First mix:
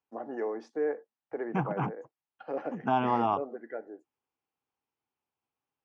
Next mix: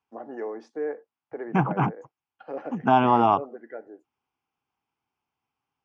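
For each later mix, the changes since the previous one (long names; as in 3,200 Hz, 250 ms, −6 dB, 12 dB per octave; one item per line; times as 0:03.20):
second voice +8.0 dB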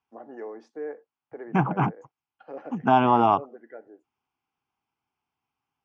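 first voice −4.5 dB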